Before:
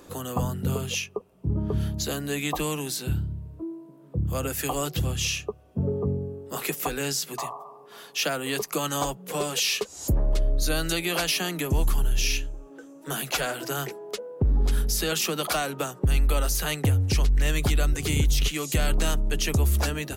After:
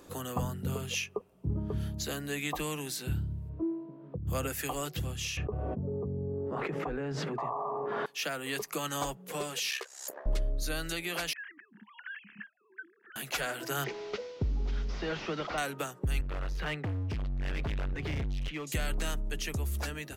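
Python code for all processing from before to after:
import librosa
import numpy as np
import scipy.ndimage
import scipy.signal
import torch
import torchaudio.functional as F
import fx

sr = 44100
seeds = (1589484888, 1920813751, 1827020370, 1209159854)

y = fx.chain(x, sr, fx.air_absorb(metres=350.0),
    fx.over_compress(threshold_db=-32.0, ratio=-1.0), at=(3.49, 4.27))
y = fx.chain(y, sr, fx.lowpass(hz=1000.0, slope=12),
    fx.env_flatten(amount_pct=100), at=(5.37, 8.06))
y = fx.chain(y, sr, fx.highpass(hz=500.0, slope=24),
    fx.peak_eq(hz=1700.0, db=9.5, octaves=0.45),
    fx.ring_mod(carrier_hz=33.0), at=(9.7, 10.26))
y = fx.chain(y, sr, fx.sine_speech(),
    fx.over_compress(threshold_db=-31.0, ratio=-1.0),
    fx.double_bandpass(hz=590.0, octaves=3.0), at=(11.33, 13.16))
y = fx.chain(y, sr, fx.delta_mod(bps=32000, step_db=-40.5),
    fx.notch(hz=1700.0, q=18.0), at=(13.84, 15.58))
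y = fx.chain(y, sr, fx.air_absorb(metres=310.0),
    fx.clip_hard(threshold_db=-26.5), at=(16.21, 18.67))
y = fx.rider(y, sr, range_db=10, speed_s=0.5)
y = fx.dynamic_eq(y, sr, hz=1900.0, q=1.5, threshold_db=-45.0, ratio=4.0, max_db=5)
y = F.gain(torch.from_numpy(y), -8.5).numpy()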